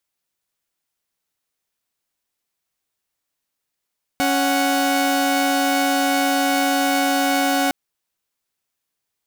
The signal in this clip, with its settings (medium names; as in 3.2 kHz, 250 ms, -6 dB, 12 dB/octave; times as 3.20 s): chord C#4/F#5 saw, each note -17 dBFS 3.51 s